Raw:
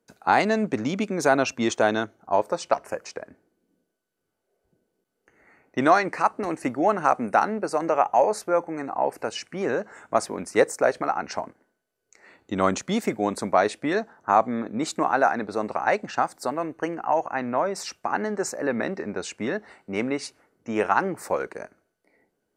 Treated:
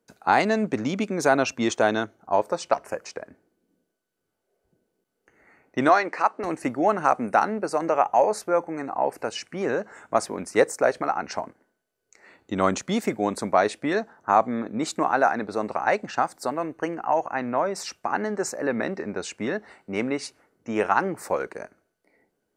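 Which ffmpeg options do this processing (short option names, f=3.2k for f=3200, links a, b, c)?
-filter_complex "[0:a]asettb=1/sr,asplit=3[a][b][c];[a]atrim=end=5.894[d];[b]atrim=start=5.89:end=6.44,asetpts=PTS-STARTPTS,afade=t=in:d=0.004:c=qsin,afade=t=out:st=0.546:d=0.004:c=qsin,highpass=310,lowpass=6k[e];[c]atrim=start=6.436[f];[d][e]acrossfade=d=0.004:c1=hsin:c2=qsin[g];[g][f]acrossfade=d=0.004:c1=qsin:c2=hsin"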